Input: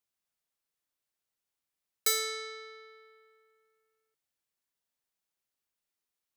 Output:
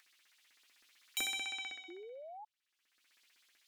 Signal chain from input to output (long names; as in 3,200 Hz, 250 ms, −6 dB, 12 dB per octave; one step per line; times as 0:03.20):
source passing by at 0:02.92, 6 m/s, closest 1.5 metres
auto-filter high-pass saw up 9.1 Hz 940–2,700 Hz
low shelf with overshoot 110 Hz −13 dB, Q 3
hum removal 54.65 Hz, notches 12
in parallel at 0 dB: downward compressor, threshold −52 dBFS, peak gain reduction 17 dB
on the sum: spectral tilt −4 dB per octave
wrong playback speed 45 rpm record played at 78 rpm
sound drawn into the spectrogram rise, 0:01.88–0:02.45, 330–880 Hz −59 dBFS
upward compression, threshold −53 dBFS
level +8 dB